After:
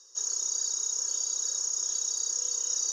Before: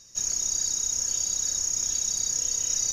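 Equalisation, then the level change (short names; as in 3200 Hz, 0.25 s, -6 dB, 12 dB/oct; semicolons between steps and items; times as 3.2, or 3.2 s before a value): steep high-pass 310 Hz 72 dB/oct; LPF 7300 Hz 12 dB/oct; fixed phaser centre 450 Hz, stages 8; 0.0 dB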